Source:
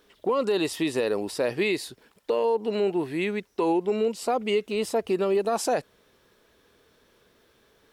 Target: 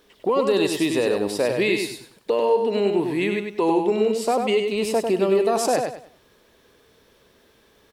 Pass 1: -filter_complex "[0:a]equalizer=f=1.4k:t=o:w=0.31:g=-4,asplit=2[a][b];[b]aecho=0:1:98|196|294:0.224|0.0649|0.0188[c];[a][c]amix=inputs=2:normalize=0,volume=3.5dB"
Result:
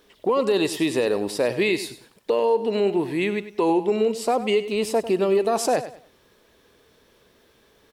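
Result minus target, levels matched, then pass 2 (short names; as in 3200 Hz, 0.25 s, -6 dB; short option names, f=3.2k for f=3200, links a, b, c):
echo-to-direct -8 dB
-filter_complex "[0:a]equalizer=f=1.4k:t=o:w=0.31:g=-4,asplit=2[a][b];[b]aecho=0:1:98|196|294|392:0.562|0.163|0.0473|0.0137[c];[a][c]amix=inputs=2:normalize=0,volume=3.5dB"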